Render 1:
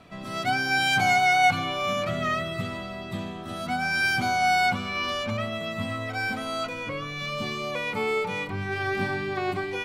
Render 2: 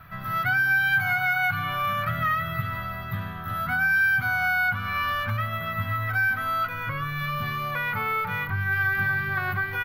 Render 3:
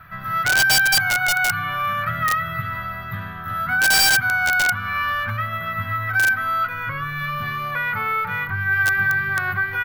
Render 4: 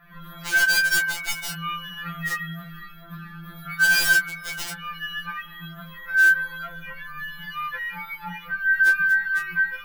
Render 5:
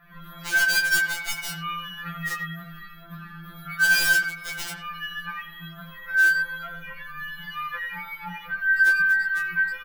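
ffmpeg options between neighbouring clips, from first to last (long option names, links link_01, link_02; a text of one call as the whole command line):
ffmpeg -i in.wav -filter_complex "[0:a]firequalizer=gain_entry='entry(140,0);entry(200,-14);entry(330,-21);entry(1500,5);entry(2400,-11);entry(8500,-23);entry(13000,14)':delay=0.05:min_phase=1,acrossover=split=2000|4200[link_01][link_02][link_03];[link_01]acompressor=threshold=-34dB:ratio=4[link_04];[link_02]acompressor=threshold=-38dB:ratio=4[link_05];[link_03]acompressor=threshold=-55dB:ratio=4[link_06];[link_04][link_05][link_06]amix=inputs=3:normalize=0,volume=9dB" out.wav
ffmpeg -i in.wav -af "equalizer=frequency=1600:width_type=o:width=1:gain=6,aeval=exprs='(mod(3.98*val(0)+1,2)-1)/3.98':channel_layout=same" out.wav
ffmpeg -i in.wav -af "flanger=delay=19:depth=4.5:speed=2.2,afftfilt=real='re*2.83*eq(mod(b,8),0)':imag='im*2.83*eq(mod(b,8),0)':win_size=2048:overlap=0.75" out.wav
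ffmpeg -i in.wav -filter_complex "[0:a]asplit=2[link_01][link_02];[link_02]adelay=90,highpass=300,lowpass=3400,asoftclip=type=hard:threshold=-17.5dB,volume=-8dB[link_03];[link_01][link_03]amix=inputs=2:normalize=0,volume=-1.5dB" out.wav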